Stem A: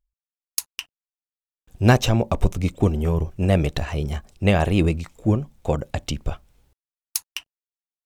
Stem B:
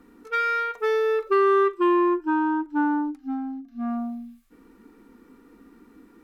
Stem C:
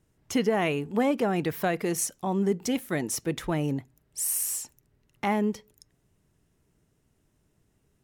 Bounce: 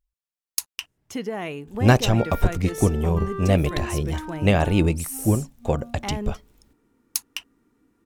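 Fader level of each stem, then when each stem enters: −0.5, −13.5, −5.0 decibels; 0.00, 1.85, 0.80 seconds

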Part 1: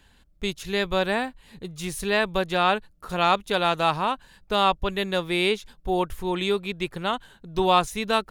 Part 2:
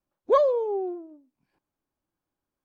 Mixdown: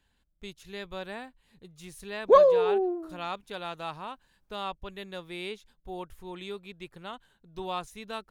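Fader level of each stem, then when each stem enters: −14.5, +2.5 decibels; 0.00, 2.00 seconds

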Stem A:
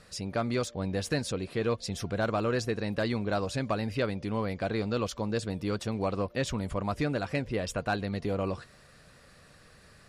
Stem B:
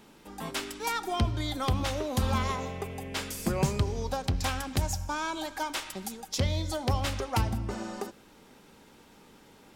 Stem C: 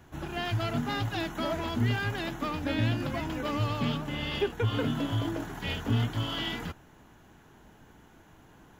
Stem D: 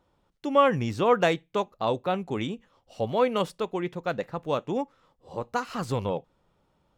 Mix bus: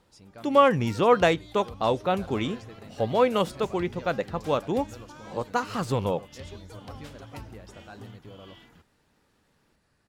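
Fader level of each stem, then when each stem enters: −16.5, −16.0, −19.5, +2.0 decibels; 0.00, 0.00, 2.10, 0.00 seconds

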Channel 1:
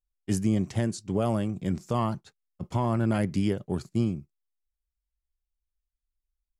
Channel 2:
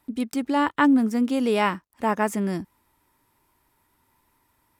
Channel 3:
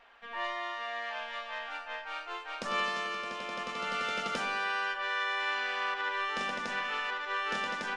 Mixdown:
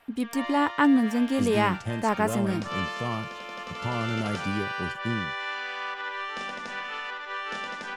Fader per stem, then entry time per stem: −4.5, −2.0, −0.5 decibels; 1.10, 0.00, 0.00 seconds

